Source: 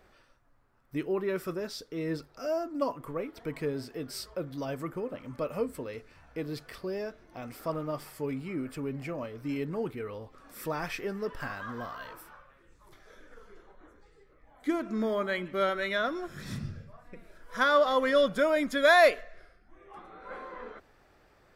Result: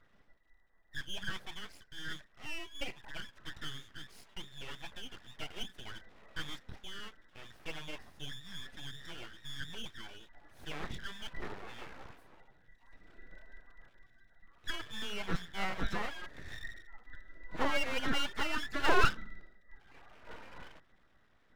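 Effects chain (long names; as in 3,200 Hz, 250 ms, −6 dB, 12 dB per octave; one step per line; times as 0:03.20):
frequency inversion band by band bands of 2,000 Hz
0:05.85–0:06.55: parametric band 640 Hz +8.5 dB → +14.5 dB 1.8 octaves
in parallel at −10 dB: dead-zone distortion −40 dBFS
on the sum: RIAA equalisation playback
full-wave rectification
level −8 dB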